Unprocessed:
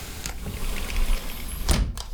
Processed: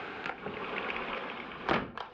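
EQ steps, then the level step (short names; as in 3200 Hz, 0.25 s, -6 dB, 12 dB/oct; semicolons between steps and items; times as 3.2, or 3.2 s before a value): speaker cabinet 430–2300 Hz, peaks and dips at 620 Hz -6 dB, 1000 Hz -4 dB, 2000 Hz -7 dB; +6.5 dB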